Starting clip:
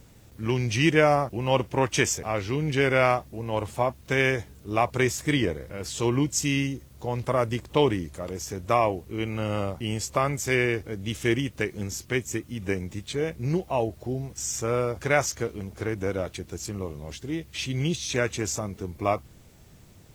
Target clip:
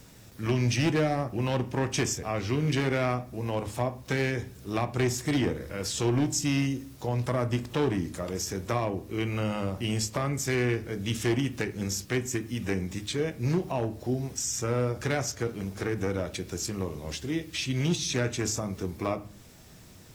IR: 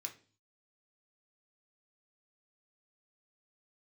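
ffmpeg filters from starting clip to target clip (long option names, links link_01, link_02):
-filter_complex "[0:a]acrossover=split=360[link_01][link_02];[link_02]acompressor=threshold=-36dB:ratio=2.5[link_03];[link_01][link_03]amix=inputs=2:normalize=0,volume=22dB,asoftclip=hard,volume=-22dB,asplit=2[link_04][link_05];[1:a]atrim=start_sample=2205,asetrate=30870,aresample=44100[link_06];[link_05][link_06]afir=irnorm=-1:irlink=0,volume=-2dB[link_07];[link_04][link_07]amix=inputs=2:normalize=0"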